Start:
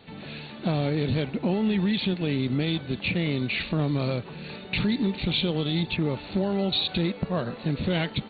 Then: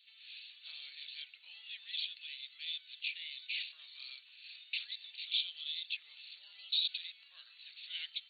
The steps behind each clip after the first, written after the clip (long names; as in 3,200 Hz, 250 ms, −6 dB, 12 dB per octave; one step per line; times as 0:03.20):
Chebyshev high-pass filter 2,900 Hz, order 3
level −5.5 dB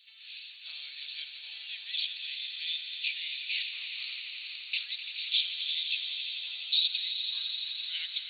echo that builds up and dies away 85 ms, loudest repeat 5, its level −11 dB
level +5.5 dB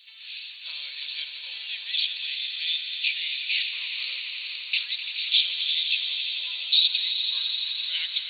hollow resonant body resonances 520/1,000 Hz, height 11 dB, ringing for 45 ms
level +7 dB